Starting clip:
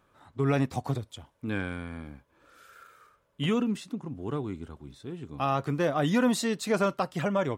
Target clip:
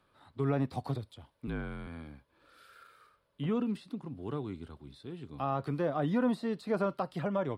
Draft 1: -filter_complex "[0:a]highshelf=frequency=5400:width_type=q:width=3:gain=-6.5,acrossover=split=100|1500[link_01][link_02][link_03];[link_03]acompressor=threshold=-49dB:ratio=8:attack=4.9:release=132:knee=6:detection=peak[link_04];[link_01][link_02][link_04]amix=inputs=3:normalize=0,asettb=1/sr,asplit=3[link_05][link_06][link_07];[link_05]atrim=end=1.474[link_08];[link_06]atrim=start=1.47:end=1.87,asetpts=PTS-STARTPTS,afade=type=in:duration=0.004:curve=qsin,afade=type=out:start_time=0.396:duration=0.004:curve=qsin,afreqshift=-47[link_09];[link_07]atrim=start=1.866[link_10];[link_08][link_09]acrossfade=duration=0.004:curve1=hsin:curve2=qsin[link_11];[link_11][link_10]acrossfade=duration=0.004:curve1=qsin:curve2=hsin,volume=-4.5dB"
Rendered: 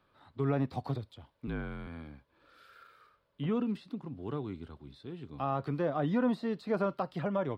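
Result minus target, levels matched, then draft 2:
8,000 Hz band −6.5 dB
-filter_complex "[0:a]highshelf=frequency=5400:width_type=q:width=3:gain=-6.5,acrossover=split=100|1500[link_01][link_02][link_03];[link_03]acompressor=threshold=-49dB:ratio=8:attack=4.9:release=132:knee=6:detection=peak,equalizer=frequency=9900:width_type=o:width=0.86:gain=10[link_04];[link_01][link_02][link_04]amix=inputs=3:normalize=0,asettb=1/sr,asplit=3[link_05][link_06][link_07];[link_05]atrim=end=1.474[link_08];[link_06]atrim=start=1.47:end=1.87,asetpts=PTS-STARTPTS,afade=type=in:duration=0.004:curve=qsin,afade=type=out:start_time=0.396:duration=0.004:curve=qsin,afreqshift=-47[link_09];[link_07]atrim=start=1.866[link_10];[link_08][link_09]acrossfade=duration=0.004:curve1=hsin:curve2=qsin[link_11];[link_11][link_10]acrossfade=duration=0.004:curve1=qsin:curve2=hsin,volume=-4.5dB"

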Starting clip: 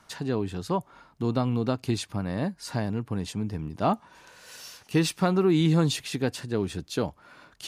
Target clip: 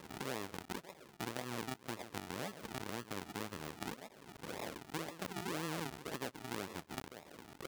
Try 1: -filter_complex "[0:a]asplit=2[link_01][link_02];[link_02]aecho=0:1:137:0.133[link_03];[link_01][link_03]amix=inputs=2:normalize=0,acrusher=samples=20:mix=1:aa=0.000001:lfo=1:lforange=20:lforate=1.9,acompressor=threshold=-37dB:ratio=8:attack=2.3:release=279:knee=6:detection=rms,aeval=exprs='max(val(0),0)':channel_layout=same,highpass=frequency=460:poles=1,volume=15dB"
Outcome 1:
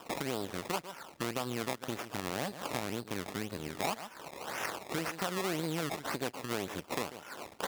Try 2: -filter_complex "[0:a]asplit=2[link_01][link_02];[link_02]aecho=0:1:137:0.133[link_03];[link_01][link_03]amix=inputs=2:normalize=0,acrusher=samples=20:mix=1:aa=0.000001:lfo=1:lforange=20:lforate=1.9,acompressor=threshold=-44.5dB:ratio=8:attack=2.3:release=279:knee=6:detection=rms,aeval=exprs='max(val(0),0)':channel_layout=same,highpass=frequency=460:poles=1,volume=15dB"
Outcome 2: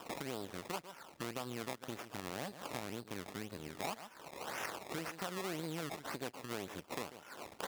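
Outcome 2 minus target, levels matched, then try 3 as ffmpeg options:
sample-and-hold swept by an LFO: distortion −9 dB
-filter_complex "[0:a]asplit=2[link_01][link_02];[link_02]aecho=0:1:137:0.133[link_03];[link_01][link_03]amix=inputs=2:normalize=0,acrusher=samples=57:mix=1:aa=0.000001:lfo=1:lforange=57:lforate=1.9,acompressor=threshold=-44.5dB:ratio=8:attack=2.3:release=279:knee=6:detection=rms,aeval=exprs='max(val(0),0)':channel_layout=same,highpass=frequency=460:poles=1,volume=15dB"

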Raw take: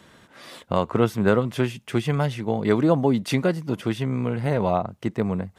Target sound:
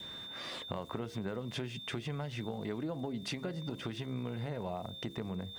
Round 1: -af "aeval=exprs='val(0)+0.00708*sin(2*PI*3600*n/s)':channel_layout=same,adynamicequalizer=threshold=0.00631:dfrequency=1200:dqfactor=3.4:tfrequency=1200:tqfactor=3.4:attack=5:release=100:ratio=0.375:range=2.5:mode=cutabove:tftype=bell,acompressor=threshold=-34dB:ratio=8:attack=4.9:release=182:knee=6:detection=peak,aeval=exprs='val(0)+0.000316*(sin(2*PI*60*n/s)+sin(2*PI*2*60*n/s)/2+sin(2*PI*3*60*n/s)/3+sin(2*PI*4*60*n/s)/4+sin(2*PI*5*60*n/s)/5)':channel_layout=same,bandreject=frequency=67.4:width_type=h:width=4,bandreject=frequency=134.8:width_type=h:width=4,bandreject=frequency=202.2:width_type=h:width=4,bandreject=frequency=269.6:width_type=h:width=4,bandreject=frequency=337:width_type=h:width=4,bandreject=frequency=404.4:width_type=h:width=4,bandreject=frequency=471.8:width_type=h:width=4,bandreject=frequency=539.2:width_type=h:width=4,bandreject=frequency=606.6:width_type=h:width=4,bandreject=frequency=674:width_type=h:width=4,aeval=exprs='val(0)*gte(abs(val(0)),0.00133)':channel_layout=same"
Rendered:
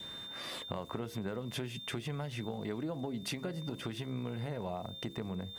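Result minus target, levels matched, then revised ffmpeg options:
8,000 Hz band +3.5 dB
-af "aeval=exprs='val(0)+0.00708*sin(2*PI*3600*n/s)':channel_layout=same,adynamicequalizer=threshold=0.00631:dfrequency=1200:dqfactor=3.4:tfrequency=1200:tqfactor=3.4:attack=5:release=100:ratio=0.375:range=2.5:mode=cutabove:tftype=bell,acompressor=threshold=-34dB:ratio=8:attack=4.9:release=182:knee=6:detection=peak,lowpass=7000,aeval=exprs='val(0)+0.000316*(sin(2*PI*60*n/s)+sin(2*PI*2*60*n/s)/2+sin(2*PI*3*60*n/s)/3+sin(2*PI*4*60*n/s)/4+sin(2*PI*5*60*n/s)/5)':channel_layout=same,bandreject=frequency=67.4:width_type=h:width=4,bandreject=frequency=134.8:width_type=h:width=4,bandreject=frequency=202.2:width_type=h:width=4,bandreject=frequency=269.6:width_type=h:width=4,bandreject=frequency=337:width_type=h:width=4,bandreject=frequency=404.4:width_type=h:width=4,bandreject=frequency=471.8:width_type=h:width=4,bandreject=frequency=539.2:width_type=h:width=4,bandreject=frequency=606.6:width_type=h:width=4,bandreject=frequency=674:width_type=h:width=4,aeval=exprs='val(0)*gte(abs(val(0)),0.00133)':channel_layout=same"

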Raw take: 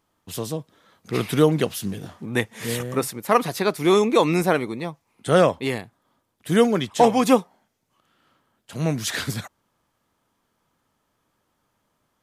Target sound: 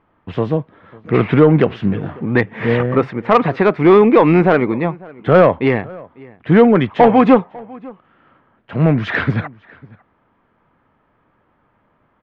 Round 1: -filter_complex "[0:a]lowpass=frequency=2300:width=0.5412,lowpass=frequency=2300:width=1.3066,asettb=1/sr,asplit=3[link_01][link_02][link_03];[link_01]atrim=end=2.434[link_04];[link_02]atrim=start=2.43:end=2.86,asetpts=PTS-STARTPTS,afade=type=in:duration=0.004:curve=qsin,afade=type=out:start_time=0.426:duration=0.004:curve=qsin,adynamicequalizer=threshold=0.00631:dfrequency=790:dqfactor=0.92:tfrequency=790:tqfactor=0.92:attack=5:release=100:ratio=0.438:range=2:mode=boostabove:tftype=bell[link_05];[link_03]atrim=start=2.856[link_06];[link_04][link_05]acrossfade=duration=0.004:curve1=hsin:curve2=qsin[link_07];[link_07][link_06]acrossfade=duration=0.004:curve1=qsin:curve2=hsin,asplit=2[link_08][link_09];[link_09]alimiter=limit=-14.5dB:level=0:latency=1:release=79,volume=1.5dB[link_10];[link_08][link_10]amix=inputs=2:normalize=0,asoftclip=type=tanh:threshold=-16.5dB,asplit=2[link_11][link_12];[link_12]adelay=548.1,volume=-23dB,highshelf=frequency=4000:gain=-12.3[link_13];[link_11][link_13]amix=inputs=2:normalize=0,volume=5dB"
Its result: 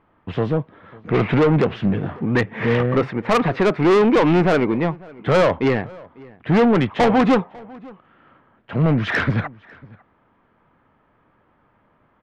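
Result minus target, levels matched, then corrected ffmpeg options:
soft clipping: distortion +11 dB
-filter_complex "[0:a]lowpass=frequency=2300:width=0.5412,lowpass=frequency=2300:width=1.3066,asettb=1/sr,asplit=3[link_01][link_02][link_03];[link_01]atrim=end=2.434[link_04];[link_02]atrim=start=2.43:end=2.86,asetpts=PTS-STARTPTS,afade=type=in:duration=0.004:curve=qsin,afade=type=out:start_time=0.426:duration=0.004:curve=qsin,adynamicequalizer=threshold=0.00631:dfrequency=790:dqfactor=0.92:tfrequency=790:tqfactor=0.92:attack=5:release=100:ratio=0.438:range=2:mode=boostabove:tftype=bell[link_05];[link_03]atrim=start=2.856[link_06];[link_04][link_05]acrossfade=duration=0.004:curve1=hsin:curve2=qsin[link_07];[link_07][link_06]acrossfade=duration=0.004:curve1=qsin:curve2=hsin,asplit=2[link_08][link_09];[link_09]alimiter=limit=-14.5dB:level=0:latency=1:release=79,volume=1.5dB[link_10];[link_08][link_10]amix=inputs=2:normalize=0,asoftclip=type=tanh:threshold=-5.5dB,asplit=2[link_11][link_12];[link_12]adelay=548.1,volume=-23dB,highshelf=frequency=4000:gain=-12.3[link_13];[link_11][link_13]amix=inputs=2:normalize=0,volume=5dB"

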